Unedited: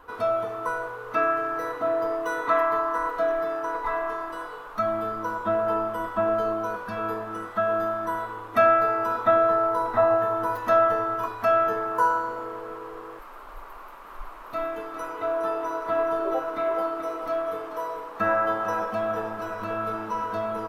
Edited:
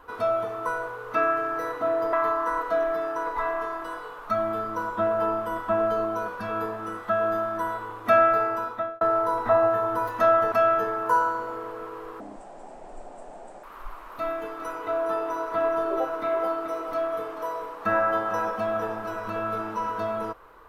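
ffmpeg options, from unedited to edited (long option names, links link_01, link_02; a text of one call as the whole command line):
ffmpeg -i in.wav -filter_complex "[0:a]asplit=6[link_01][link_02][link_03][link_04][link_05][link_06];[link_01]atrim=end=2.132[link_07];[link_02]atrim=start=2.608:end=9.49,asetpts=PTS-STARTPTS,afade=type=out:start_time=6.292:duration=0.59[link_08];[link_03]atrim=start=9.49:end=11.002,asetpts=PTS-STARTPTS,afade=type=in:duration=0.004:curve=hsin[link_09];[link_04]atrim=start=11.408:end=13.094[link_10];[link_05]atrim=start=13.09:end=13.98,asetpts=PTS-STARTPTS,asetrate=27342,aresample=44100[link_11];[link_06]atrim=start=13.976[link_12];[link_08][link_09]concat=n=2:v=0:a=1[link_13];[link_07][link_13]acrossfade=duration=0.004:curve1=hsin:curve2=hsin[link_14];[link_14][link_10]acrossfade=duration=0.004:curve1=hsin:curve2=hsin[link_15];[link_15][link_11]acrossfade=duration=0.004:curve1=hsin:curve2=hsin[link_16];[link_16][link_12]acrossfade=duration=0.004:curve1=hsin:curve2=hsin" out.wav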